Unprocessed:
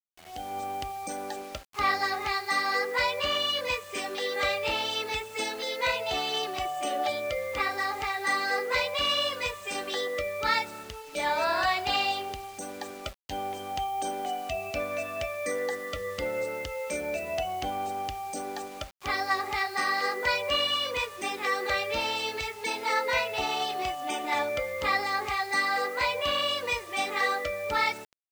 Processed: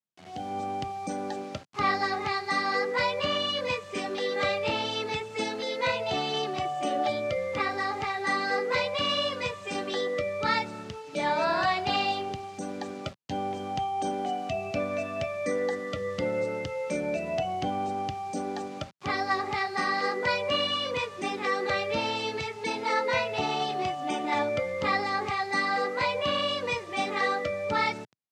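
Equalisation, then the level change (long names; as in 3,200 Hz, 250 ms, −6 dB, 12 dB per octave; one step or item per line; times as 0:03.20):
high-pass filter 120 Hz 24 dB per octave
bass and treble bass +11 dB, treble +12 dB
head-to-tape spacing loss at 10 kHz 27 dB
+3.0 dB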